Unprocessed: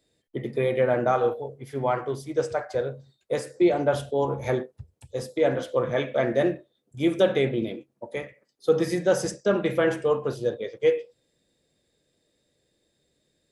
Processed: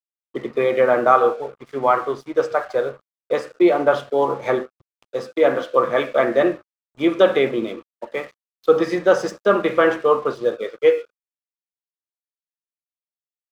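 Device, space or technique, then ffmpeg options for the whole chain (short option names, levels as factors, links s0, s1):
pocket radio on a weak battery: -af "highpass=270,lowpass=4100,aeval=exprs='sgn(val(0))*max(abs(val(0))-0.00266,0)':c=same,equalizer=f=1200:t=o:w=0.36:g=10,volume=2.11"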